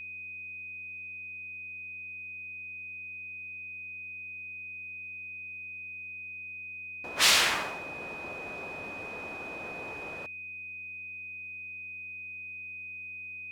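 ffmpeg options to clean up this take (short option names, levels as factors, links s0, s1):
-af "bandreject=f=90.5:t=h:w=4,bandreject=f=181:t=h:w=4,bandreject=f=271.5:t=h:w=4,bandreject=f=362:t=h:w=4,bandreject=f=2500:w=30"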